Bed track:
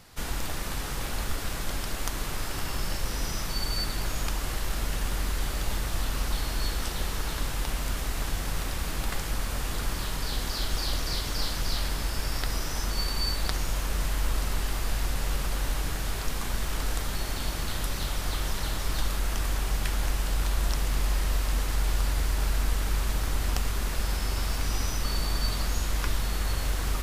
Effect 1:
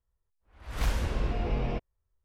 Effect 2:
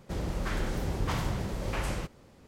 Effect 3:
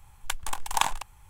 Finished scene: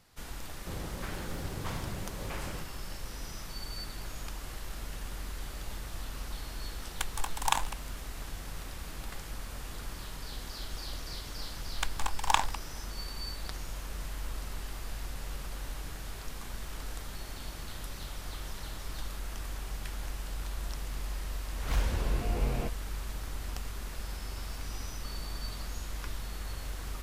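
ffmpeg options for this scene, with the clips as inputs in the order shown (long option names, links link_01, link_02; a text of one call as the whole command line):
ffmpeg -i bed.wav -i cue0.wav -i cue1.wav -i cue2.wav -filter_complex "[3:a]asplit=2[link_01][link_02];[0:a]volume=-10.5dB[link_03];[2:a]highpass=46[link_04];[link_02]equalizer=frequency=12000:width=1.1:gain=-12[link_05];[link_04]atrim=end=2.47,asetpts=PTS-STARTPTS,volume=-6.5dB,afade=type=in:duration=0.004:curve=hsin,afade=type=out:start_time=2.466:duration=0.004:curve=hsin,adelay=570[link_06];[link_01]atrim=end=1.29,asetpts=PTS-STARTPTS,volume=-3.5dB,afade=type=in:duration=0.004:curve=hsin,afade=type=out:start_time=1.286:duration=0.004:curve=hsin,adelay=6710[link_07];[link_05]atrim=end=1.29,asetpts=PTS-STARTPTS,volume=-1dB,afade=type=in:duration=0.004:curve=hsin,afade=type=out:start_time=1.286:duration=0.004:curve=hsin,adelay=11530[link_08];[1:a]atrim=end=2.24,asetpts=PTS-STARTPTS,volume=-2.5dB,afade=type=in:duration=0.004:curve=hsin,afade=type=out:start_time=2.236:duration=0.004:curve=hsin,adelay=20900[link_09];[link_03][link_06][link_07][link_08][link_09]amix=inputs=5:normalize=0" out.wav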